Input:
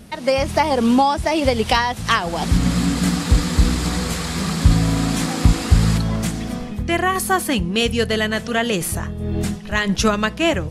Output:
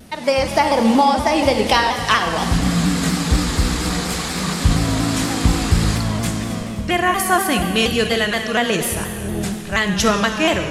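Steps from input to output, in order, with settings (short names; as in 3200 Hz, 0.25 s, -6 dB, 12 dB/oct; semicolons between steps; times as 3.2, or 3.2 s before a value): low shelf 220 Hz -4.5 dB; Schroeder reverb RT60 2.3 s, combs from 31 ms, DRR 5 dB; shaped vibrato saw down 4.2 Hz, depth 100 cents; gain +1.5 dB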